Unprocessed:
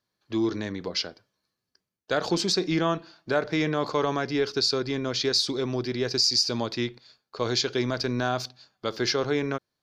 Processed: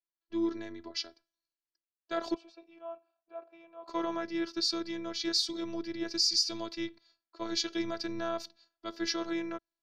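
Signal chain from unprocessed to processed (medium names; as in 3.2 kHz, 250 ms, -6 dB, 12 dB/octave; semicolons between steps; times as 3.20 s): 2.34–3.88 s: vowel filter a; robot voice 334 Hz; three bands expanded up and down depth 40%; trim -6 dB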